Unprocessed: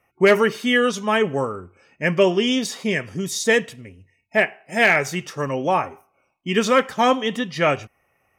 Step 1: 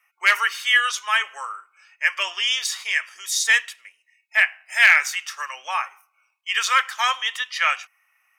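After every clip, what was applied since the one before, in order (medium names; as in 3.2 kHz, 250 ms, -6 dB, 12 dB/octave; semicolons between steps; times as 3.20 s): high-pass 1.2 kHz 24 dB/octave; trim +4 dB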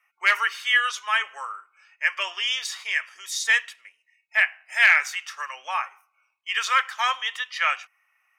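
treble shelf 4.9 kHz -8 dB; trim -1.5 dB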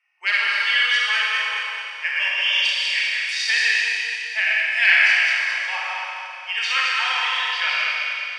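backward echo that repeats 106 ms, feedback 61%, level -2 dB; cabinet simulation 410–8100 Hz, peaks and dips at 620 Hz -3 dB, 1.2 kHz -10 dB, 2.7 kHz +6 dB, 4.6 kHz +9 dB, 6.7 kHz -9 dB; Schroeder reverb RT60 2.8 s, combs from 30 ms, DRR -3.5 dB; trim -4 dB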